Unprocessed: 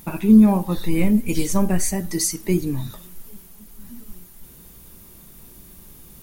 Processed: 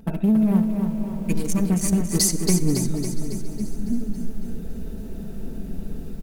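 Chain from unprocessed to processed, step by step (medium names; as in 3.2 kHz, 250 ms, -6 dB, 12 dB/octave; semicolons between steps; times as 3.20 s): local Wiener filter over 41 samples; bass shelf 350 Hz -2.5 dB; comb 4.5 ms, depth 60%; dynamic bell 150 Hz, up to +5 dB, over -31 dBFS, Q 1.3; level rider gain up to 12 dB; in parallel at +0.5 dB: peak limiter -8.5 dBFS, peak gain reduction 8 dB; on the sum: compression 10:1, threshold -12 dBFS, peak gain reduction 12 dB; saturation -8 dBFS, distortion -22 dB; on a send: feedback delay 485 ms, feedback 55%, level -20.5 dB; on the sum: algorithmic reverb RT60 1.8 s, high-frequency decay 0.35×, pre-delay 45 ms, DRR 14.5 dB; spectral freeze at 0.66 s, 0.62 s; bit-crushed delay 277 ms, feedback 55%, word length 8-bit, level -6 dB; trim -2.5 dB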